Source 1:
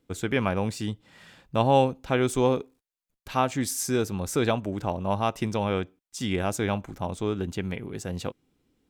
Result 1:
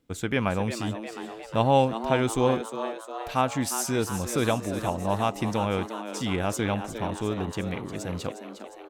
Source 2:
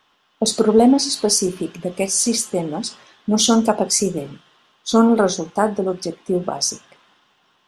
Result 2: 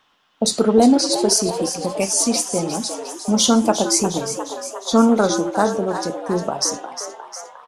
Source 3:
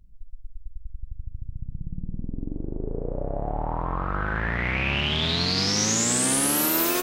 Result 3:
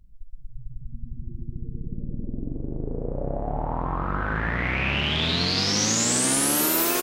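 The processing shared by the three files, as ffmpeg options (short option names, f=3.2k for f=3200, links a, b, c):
-filter_complex "[0:a]equalizer=f=390:w=5:g=-3.5,asplit=2[a][b];[b]asplit=7[c][d][e][f][g][h][i];[c]adelay=356,afreqshift=110,volume=-10dB[j];[d]adelay=712,afreqshift=220,volume=-14.4dB[k];[e]adelay=1068,afreqshift=330,volume=-18.9dB[l];[f]adelay=1424,afreqshift=440,volume=-23.3dB[m];[g]adelay=1780,afreqshift=550,volume=-27.7dB[n];[h]adelay=2136,afreqshift=660,volume=-32.2dB[o];[i]adelay=2492,afreqshift=770,volume=-36.6dB[p];[j][k][l][m][n][o][p]amix=inputs=7:normalize=0[q];[a][q]amix=inputs=2:normalize=0"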